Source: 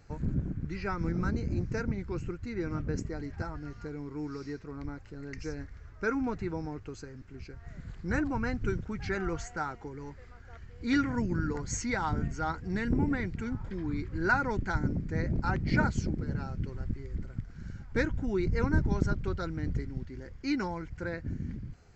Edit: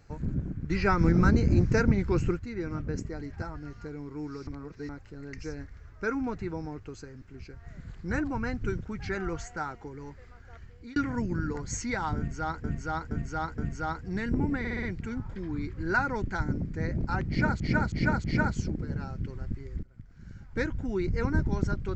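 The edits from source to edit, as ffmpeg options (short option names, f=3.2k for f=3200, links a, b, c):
-filter_complex "[0:a]asplit=17[a][b][c][d][e][f][g][h][i][j][k][l][m][n][o][p][q];[a]atrim=end=0.702[r];[b]atrim=start=0.698:end=2.392,asetpts=PTS-STARTPTS,volume=9dB[s];[c]atrim=start=2.388:end=4.472[t];[d]atrim=start=4.468:end=4.892,asetpts=PTS-STARTPTS,areverse[u];[e]atrim=start=4.888:end=10.96,asetpts=PTS-STARTPTS,afade=t=out:st=5.772:d=0.3[v];[f]atrim=start=10.96:end=12.642,asetpts=PTS-STARTPTS,afade=t=in:d=0.004:c=hsin[w];[g]atrim=start=12.168:end=12.642[x];[h]atrim=start=12.168:end=12.642[y];[i]atrim=start=12.168:end=13.242[z];[j]atrim=start=13.178:end=13.242[aa];[k]atrim=start=13.178:end=13.242[ab];[l]atrim=start=13.178:end=13.242[ac];[m]atrim=start=13.178:end=15.952[ad];[n]atrim=start=15.628:end=15.952[ae];[o]atrim=start=15.628:end=15.952[af];[p]atrim=start=15.628:end=17.22,asetpts=PTS-STARTPTS,afade=t=out:st=1.588:d=0.004:c=hsin:silence=0.1[ag];[q]atrim=start=17.22,asetpts=PTS-STARTPTS,afade=t=in:d=1.21:c=qsin:silence=0.1[ah];[r][s]acrossfade=d=0.004:c1=hsin:c2=hsin[ai];[ai][t]acrossfade=d=0.004:c1=hsin:c2=hsin[aj];[aj][u]acrossfade=d=0.004:c1=hsin:c2=hsin[ak];[v][w]concat=n=2:v=0:a=1[al];[ak][al]acrossfade=d=0.004:c1=hsin:c2=hsin[am];[am][x]acrossfade=d=0.004:c1=hsin:c2=hsin[an];[an][y]acrossfade=d=0.004:c1=hsin:c2=hsin[ao];[ao][z]acrossfade=d=0.004:c1=hsin:c2=hsin[ap];[ap][aa]acrossfade=d=0.004:c1=hsin:c2=hsin[aq];[aq][ab]acrossfade=d=0.004:c1=hsin:c2=hsin[ar];[ar][ac]acrossfade=d=0.004:c1=hsin:c2=hsin[as];[as][ad]acrossfade=d=0.004:c1=hsin:c2=hsin[at];[at][ae]acrossfade=d=0.004:c1=hsin:c2=hsin[au];[au][af]acrossfade=d=0.004:c1=hsin:c2=hsin[av];[ag][ah]concat=n=2:v=0:a=1[aw];[av][aw]acrossfade=d=0.004:c1=hsin:c2=hsin"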